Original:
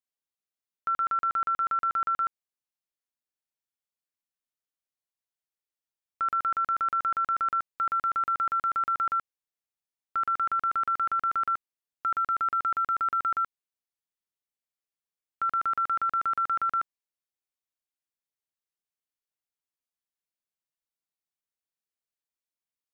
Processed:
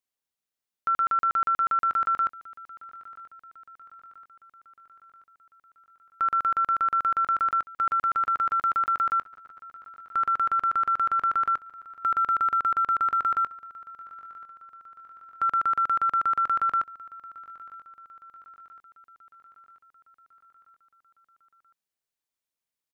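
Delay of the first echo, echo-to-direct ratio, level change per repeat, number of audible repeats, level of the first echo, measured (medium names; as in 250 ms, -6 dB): 982 ms, -18.5 dB, -5.0 dB, 4, -20.0 dB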